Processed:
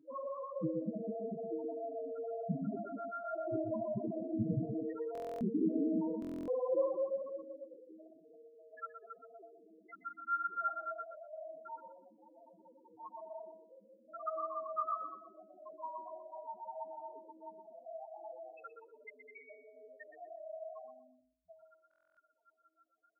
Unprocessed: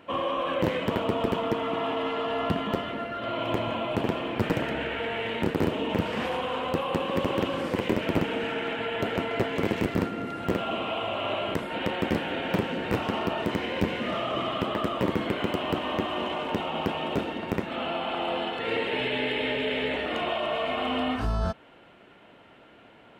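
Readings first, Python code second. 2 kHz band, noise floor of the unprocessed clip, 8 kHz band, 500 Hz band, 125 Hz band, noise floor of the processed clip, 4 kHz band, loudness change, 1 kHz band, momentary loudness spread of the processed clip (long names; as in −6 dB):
−23.0 dB, −53 dBFS, below −25 dB, −11.5 dB, −14.0 dB, −75 dBFS, below −40 dB, −11.0 dB, −13.0 dB, 21 LU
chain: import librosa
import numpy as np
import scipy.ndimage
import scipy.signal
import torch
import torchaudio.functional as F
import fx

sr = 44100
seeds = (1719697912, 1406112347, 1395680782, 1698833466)

y = fx.spec_topn(x, sr, count=2)
y = fx.echo_feedback(y, sr, ms=122, feedback_pct=18, wet_db=-8.5)
y = fx.rider(y, sr, range_db=10, speed_s=0.5)
y = fx.filter_sweep_highpass(y, sr, from_hz=140.0, to_hz=1300.0, start_s=5.01, end_s=8.07, q=3.9)
y = fx.comb_fb(y, sr, f0_hz=320.0, decay_s=0.67, harmonics='all', damping=0.0, mix_pct=90)
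y = fx.buffer_glitch(y, sr, at_s=(5.13, 6.2, 21.89), block=1024, repeats=11)
y = y * 10.0 ** (12.5 / 20.0)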